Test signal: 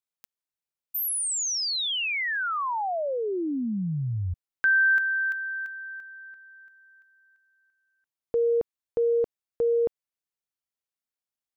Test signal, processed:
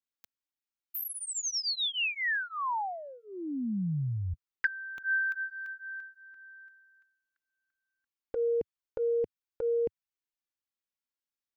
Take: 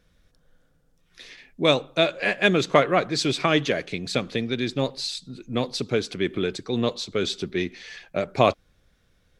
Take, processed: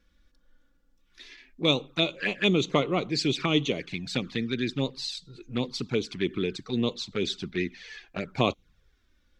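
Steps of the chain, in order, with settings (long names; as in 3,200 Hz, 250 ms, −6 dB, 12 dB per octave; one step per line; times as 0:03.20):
flanger swept by the level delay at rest 3.6 ms, full sweep at −19.5 dBFS
graphic EQ with 15 bands 100 Hz −4 dB, 630 Hz −9 dB, 10,000 Hz −9 dB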